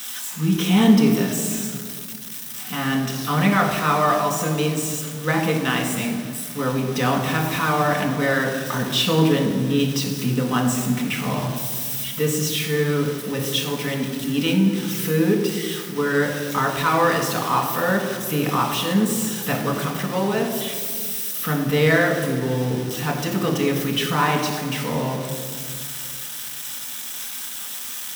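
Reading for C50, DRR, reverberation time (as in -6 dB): 5.5 dB, 0.0 dB, 2.0 s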